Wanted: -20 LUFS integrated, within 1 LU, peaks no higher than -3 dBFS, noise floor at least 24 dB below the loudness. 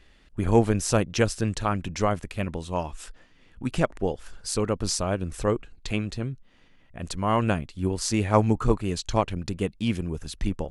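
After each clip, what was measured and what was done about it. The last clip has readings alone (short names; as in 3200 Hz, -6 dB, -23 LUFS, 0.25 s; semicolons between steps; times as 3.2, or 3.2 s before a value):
loudness -27.0 LUFS; peak -5.0 dBFS; loudness target -20.0 LUFS
-> gain +7 dB; limiter -3 dBFS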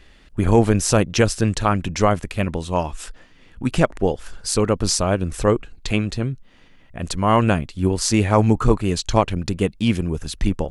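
loudness -20.5 LUFS; peak -3.0 dBFS; noise floor -50 dBFS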